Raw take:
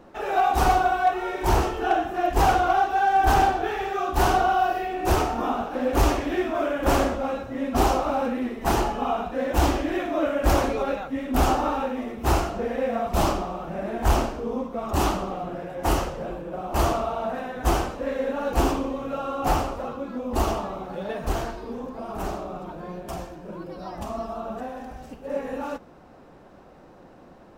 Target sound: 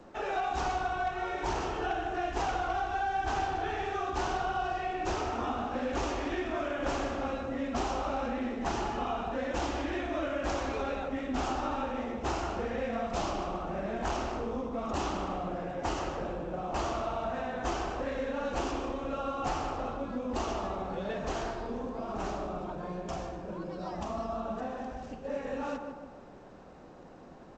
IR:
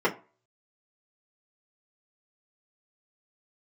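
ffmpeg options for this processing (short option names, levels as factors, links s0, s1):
-filter_complex "[0:a]asplit=2[s0][s1];[s1]adelay=152,lowpass=f=1900:p=1,volume=0.447,asplit=2[s2][s3];[s3]adelay=152,lowpass=f=1900:p=1,volume=0.5,asplit=2[s4][s5];[s5]adelay=152,lowpass=f=1900:p=1,volume=0.5,asplit=2[s6][s7];[s7]adelay=152,lowpass=f=1900:p=1,volume=0.5,asplit=2[s8][s9];[s9]adelay=152,lowpass=f=1900:p=1,volume=0.5,asplit=2[s10][s11];[s11]adelay=152,lowpass=f=1900:p=1,volume=0.5[s12];[s0][s2][s4][s6][s8][s10][s12]amix=inputs=7:normalize=0,acrossover=split=180|1300[s13][s14][s15];[s13]acompressor=threshold=0.0141:ratio=4[s16];[s14]acompressor=threshold=0.0316:ratio=4[s17];[s15]acompressor=threshold=0.0158:ratio=4[s18];[s16][s17][s18]amix=inputs=3:normalize=0,volume=0.708" -ar 16000 -c:a g722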